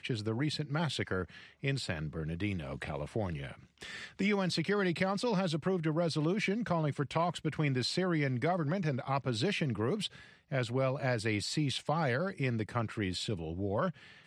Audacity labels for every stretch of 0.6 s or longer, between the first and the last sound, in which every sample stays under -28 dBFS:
3.300000	4.200000	silence